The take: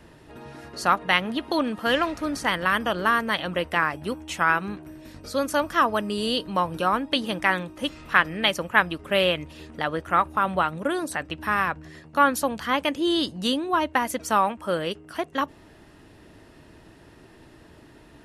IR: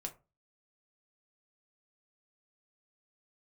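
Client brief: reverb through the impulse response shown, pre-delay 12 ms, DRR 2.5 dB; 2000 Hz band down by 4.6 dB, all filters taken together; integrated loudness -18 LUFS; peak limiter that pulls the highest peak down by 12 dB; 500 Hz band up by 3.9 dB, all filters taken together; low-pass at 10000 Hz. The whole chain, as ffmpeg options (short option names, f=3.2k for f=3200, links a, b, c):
-filter_complex "[0:a]lowpass=10k,equalizer=f=500:t=o:g=5,equalizer=f=2k:t=o:g=-6.5,alimiter=limit=-16.5dB:level=0:latency=1,asplit=2[a][b];[1:a]atrim=start_sample=2205,adelay=12[c];[b][c]afir=irnorm=-1:irlink=0,volume=-0.5dB[d];[a][d]amix=inputs=2:normalize=0,volume=8dB"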